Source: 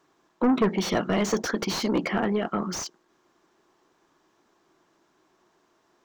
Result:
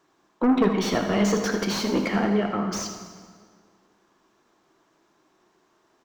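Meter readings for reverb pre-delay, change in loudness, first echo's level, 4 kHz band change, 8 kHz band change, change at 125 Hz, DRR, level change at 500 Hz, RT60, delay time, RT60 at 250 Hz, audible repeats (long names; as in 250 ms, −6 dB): 13 ms, +2.0 dB, −10.5 dB, +1.5 dB, +1.0 dB, +3.0 dB, 4.0 dB, +1.5 dB, 1.9 s, 79 ms, 2.0 s, 1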